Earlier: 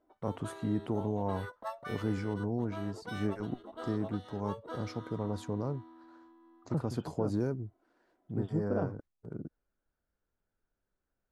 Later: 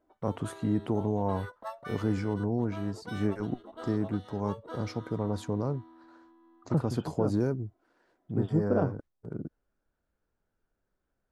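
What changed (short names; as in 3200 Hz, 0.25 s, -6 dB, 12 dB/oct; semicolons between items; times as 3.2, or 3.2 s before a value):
first voice +4.0 dB; second voice +6.0 dB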